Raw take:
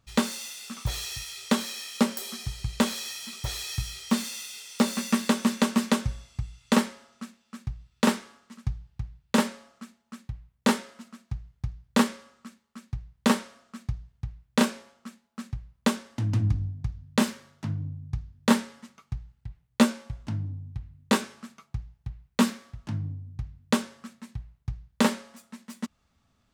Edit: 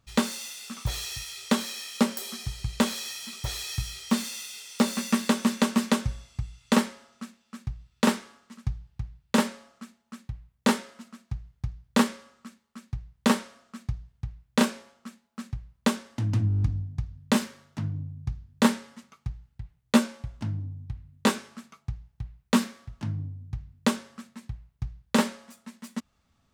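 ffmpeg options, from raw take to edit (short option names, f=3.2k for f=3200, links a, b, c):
-filter_complex "[0:a]asplit=8[a][b][c][d][e][f][g][h];[a]atrim=end=16.502[i];[b]atrim=start=16.478:end=16.502[j];[c]atrim=start=16.478:end=16.502[k];[d]atrim=start=16.478:end=16.502[l];[e]atrim=start=16.478:end=16.502[m];[f]atrim=start=16.478:end=16.502[n];[g]atrim=start=16.478:end=16.502[o];[h]atrim=start=16.478[p];[i][j]acrossfade=d=0.004:c1=hsin:c2=hsin[q];[q][k]acrossfade=d=0.004:c1=hsin:c2=hsin[r];[r][l]acrossfade=d=0.004:c1=hsin:c2=hsin[s];[s][m]acrossfade=d=0.004:c1=hsin:c2=hsin[t];[t][n]acrossfade=d=0.004:c1=hsin:c2=hsin[u];[u][o]acrossfade=d=0.004:c1=hsin:c2=hsin[v];[v][p]acrossfade=d=0.004:c1=hsin:c2=hsin"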